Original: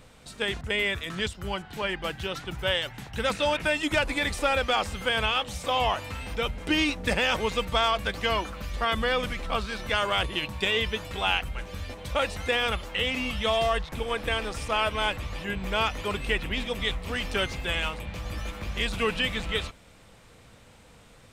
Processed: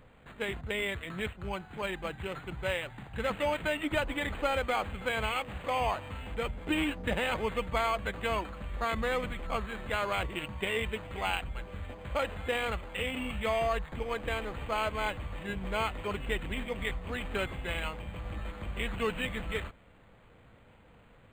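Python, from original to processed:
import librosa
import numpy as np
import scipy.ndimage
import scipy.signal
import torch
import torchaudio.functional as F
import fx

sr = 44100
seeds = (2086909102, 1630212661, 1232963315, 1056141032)

y = np.interp(np.arange(len(x)), np.arange(len(x))[::8], x[::8])
y = y * librosa.db_to_amplitude(-4.0)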